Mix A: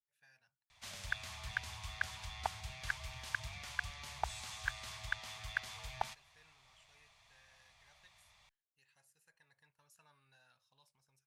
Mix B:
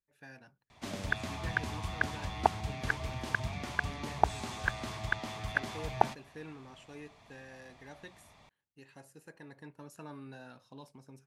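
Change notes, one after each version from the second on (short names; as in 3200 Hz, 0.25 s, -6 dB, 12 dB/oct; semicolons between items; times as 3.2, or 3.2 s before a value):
speech +8.5 dB; master: remove passive tone stack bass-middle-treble 10-0-10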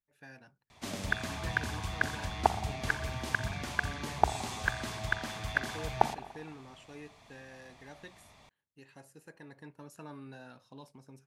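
background: add high shelf 5200 Hz +6.5 dB; reverb: on, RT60 1.2 s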